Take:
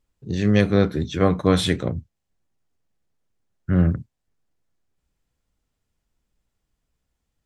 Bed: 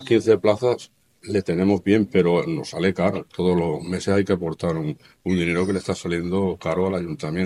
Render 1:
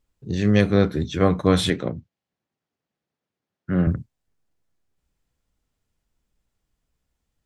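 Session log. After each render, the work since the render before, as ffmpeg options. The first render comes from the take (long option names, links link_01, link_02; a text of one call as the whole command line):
ffmpeg -i in.wav -filter_complex "[0:a]asettb=1/sr,asplit=3[link_01][link_02][link_03];[link_01]atrim=end=1.704[link_04];[link_02]atrim=start=1.7:end=3.87,asetpts=PTS-STARTPTS,afade=type=in:duration=0.004:curve=qsin,afade=type=out:start_time=2.166:duration=0.004:curve=qsin,highpass=150,lowpass=4800[link_05];[link_03]atrim=start=3.866[link_06];[link_04][link_05]acrossfade=duration=0.004:curve1=hsin:curve2=qsin[link_07];[link_07][link_06]acrossfade=duration=0.004:curve1=qsin:curve2=hsin" out.wav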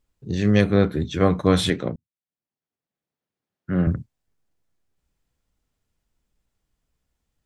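ffmpeg -i in.wav -filter_complex "[0:a]asettb=1/sr,asplit=3[link_01][link_02][link_03];[link_01]atrim=end=0.644[link_04];[link_02]atrim=start=0.64:end=1.11,asetpts=PTS-STARTPTS,afade=type=in:duration=0.004:curve=qsin,afade=type=out:start_time=0.466:duration=0.004:curve=qsin,equalizer=frequency=5600:width_type=o:width=0.54:gain=-10.5[link_05];[link_03]atrim=start=1.106[link_06];[link_04][link_05]acrossfade=duration=0.004:curve1=hsin:curve2=qsin[link_07];[link_07][link_06]acrossfade=duration=0.004:curve1=qsin:curve2=hsin,asplit=2[link_08][link_09];[link_08]atrim=end=1.96,asetpts=PTS-STARTPTS,afade=type=out:start_time=1.956:duration=0.004:curve=hsin[link_10];[link_09]atrim=start=1.96,asetpts=PTS-STARTPTS,afade=type=in:duration=1.99[link_11];[link_10][link_11]concat=n=2:v=0:a=1" out.wav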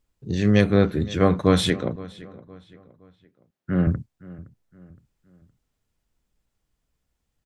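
ffmpeg -i in.wav -filter_complex "[0:a]asplit=2[link_01][link_02];[link_02]adelay=516,lowpass=frequency=3800:poles=1,volume=-19.5dB,asplit=2[link_03][link_04];[link_04]adelay=516,lowpass=frequency=3800:poles=1,volume=0.41,asplit=2[link_05][link_06];[link_06]adelay=516,lowpass=frequency=3800:poles=1,volume=0.41[link_07];[link_01][link_03][link_05][link_07]amix=inputs=4:normalize=0" out.wav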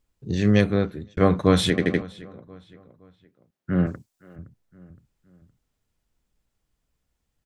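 ffmpeg -i in.wav -filter_complex "[0:a]asettb=1/sr,asplit=3[link_01][link_02][link_03];[link_01]atrim=end=3.864[link_04];[link_02]atrim=start=3.86:end=4.36,asetpts=PTS-STARTPTS,afade=type=in:duration=0.004:curve=qsin,afade=type=out:start_time=0.496:duration=0.004:curve=qsin,bass=frequency=250:gain=-14,treble=frequency=4000:gain=10[link_05];[link_03]atrim=start=4.356[link_06];[link_04][link_05]acrossfade=duration=0.004:curve1=hsin:curve2=qsin[link_07];[link_07][link_06]acrossfade=duration=0.004:curve1=qsin:curve2=hsin,asplit=6[link_08][link_09][link_10][link_11][link_12][link_13];[link_08]atrim=end=1.17,asetpts=PTS-STARTPTS,afade=type=out:start_time=0.52:duration=0.65[link_14];[link_09]atrim=start=1.17:end=1.782,asetpts=PTS-STARTPTS,afade=type=in:duration=0.004:curve=hsin[link_15];[link_10]atrim=start=1.698:end=1.782[link_16];[link_11]atrim=start=1.698:end=1.782[link_17];[link_12]atrim=start=1.698:end=1.782[link_18];[link_13]atrim=start=2.018[link_19];[link_14][link_15]concat=n=2:v=0:a=1[link_20];[link_20][link_16]acrossfade=duration=0.004:curve1=hsin:curve2=hsin[link_21];[link_21][link_17]acrossfade=duration=0.004:curve1=hsin:curve2=hsin[link_22];[link_22][link_18]acrossfade=duration=0.004:curve1=hsin:curve2=hsin[link_23];[link_23][link_19]acrossfade=duration=0.004:curve1=hsin:curve2=hsin" out.wav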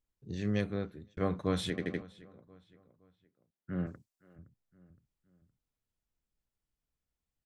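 ffmpeg -i in.wav -af "volume=-13.5dB" out.wav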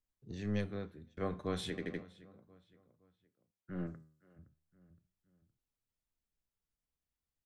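ffmpeg -i in.wav -filter_complex "[0:a]flanger=delay=8.2:depth=5.1:regen=85:speed=0.34:shape=sinusoidal,acrossover=split=210[link_01][link_02];[link_01]aeval=exprs='clip(val(0),-1,0.00299)':channel_layout=same[link_03];[link_03][link_02]amix=inputs=2:normalize=0" out.wav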